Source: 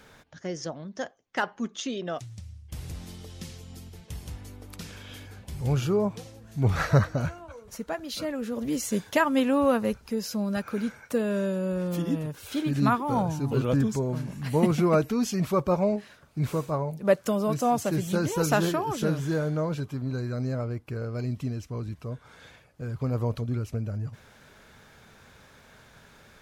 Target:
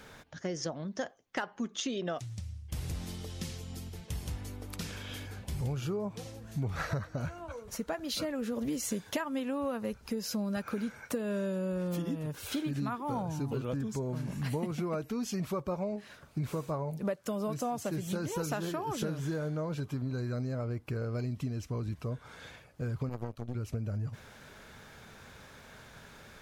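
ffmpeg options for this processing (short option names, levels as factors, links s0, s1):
-filter_complex "[0:a]acompressor=threshold=0.0251:ratio=12,asettb=1/sr,asplit=3[s0][s1][s2];[s0]atrim=end=23.094[s3];[s1]atrim=start=23.09:end=23.55,asetpts=PTS-STARTPTS,afade=t=in:d=0.004:c=qsin,afade=t=out:st=0.456:d=0.004:c=qsin,aeval=exprs='0.0501*(cos(1*acos(clip(val(0)/0.0501,-1,1)))-cos(1*PI/2))+0.0126*(cos(3*acos(clip(val(0)/0.0501,-1,1)))-cos(3*PI/2))+0.00141*(cos(8*acos(clip(val(0)/0.0501,-1,1)))-cos(8*PI/2))':c=same[s4];[s2]atrim=start=23.546[s5];[s3][s4]acrossfade=d=0.004:c1=hsin:c2=qsin[s6];[s6][s5]acrossfade=d=0.004:c1=qsin:c2=hsin,volume=1.19"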